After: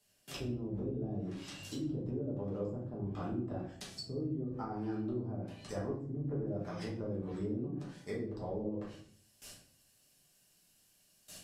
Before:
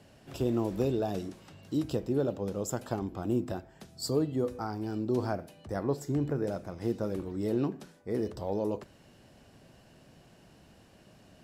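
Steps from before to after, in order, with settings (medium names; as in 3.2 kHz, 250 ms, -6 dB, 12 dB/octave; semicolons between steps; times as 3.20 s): pre-emphasis filter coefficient 0.9; gate with hold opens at -58 dBFS; treble shelf 5 kHz +4 dB, from 7.08 s +10.5 dB; low-pass that closes with the level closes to 320 Hz, closed at -44.5 dBFS; compression, threshold -51 dBFS, peak gain reduction 6.5 dB; simulated room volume 68 m³, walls mixed, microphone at 1.3 m; trim +11 dB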